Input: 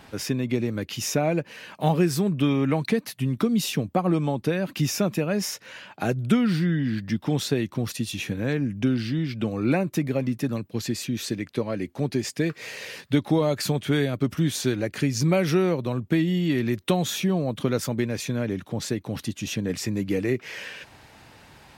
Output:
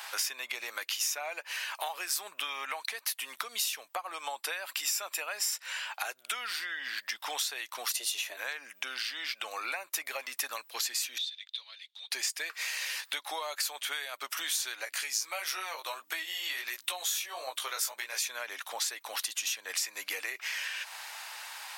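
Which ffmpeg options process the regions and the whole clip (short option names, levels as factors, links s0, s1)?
-filter_complex "[0:a]asettb=1/sr,asplit=3[s0][s1][s2];[s0]atrim=end=4.304[s3];[s1]atrim=start=4.3:end=5.92,asetpts=PTS-STARTPTS,afade=t=in:d=0.004:c=qsin,afade=t=out:st=1.616:d=0.004:c=qsin,equalizer=f=7400:w=7.7:g=11,bandreject=f=6600:w=6.9[s4];[s2]atrim=start=5.916[s5];[s3][s4]acrossfade=d=0.004:c1=hsin:c2=qsin[s6];[s6][s5]acrossfade=d=0.004:c1=qsin:c2=hsin,asettb=1/sr,asplit=3[s7][s8][s9];[s7]atrim=end=7.914[s10];[s8]atrim=start=7.91:end=8.37,asetpts=PTS-STARTPTS,afade=t=in:d=0.004:c=qsin,afade=t=out:st=0.456:d=0.004:c=qsin,equalizer=f=530:t=o:w=0.21:g=8,afreqshift=120[s11];[s9]atrim=start=8.366[s12];[s10][s11]acrossfade=d=0.004:c1=hsin:c2=qsin[s13];[s13][s12]acrossfade=d=0.004:c1=qsin:c2=hsin,asettb=1/sr,asplit=3[s14][s15][s16];[s14]atrim=end=11.184[s17];[s15]atrim=start=11.18:end=12.11,asetpts=PTS-STARTPTS,afade=t=in:d=0.004:c=qsin,afade=t=out:st=0.926:d=0.004:c=qsin,bandpass=f=3600:t=q:w=17,acontrast=53[s18];[s16]atrim=start=12.106[s19];[s17][s18]acrossfade=d=0.004:c1=hsin:c2=qsin[s20];[s20][s19]acrossfade=d=0.004:c1=qsin:c2=hsin,asettb=1/sr,asplit=3[s21][s22][s23];[s21]atrim=end=14.854[s24];[s22]atrim=start=14.85:end=18.23,asetpts=PTS-STARTPTS,afade=t=in:d=0.004:c=qsin,afade=t=out:st=3.376:d=0.004:c=qsin,aeval=exprs='val(0)+0.0224*(sin(2*PI*60*n/s)+sin(2*PI*2*60*n/s)/2+sin(2*PI*3*60*n/s)/3+sin(2*PI*4*60*n/s)/4+sin(2*PI*5*60*n/s)/5)':c=same,bass=f=250:g=-8,treble=f=4000:g=3,flanger=delay=15.5:depth=4.5:speed=1.5[s25];[s23]atrim=start=18.226[s26];[s24][s25]acrossfade=d=0.004:c1=hsin:c2=qsin[s27];[s27][s26]acrossfade=d=0.004:c1=qsin:c2=hsin,highpass=f=850:w=0.5412,highpass=f=850:w=1.3066,acompressor=threshold=0.00794:ratio=10,highshelf=f=5600:g=9,volume=2.51"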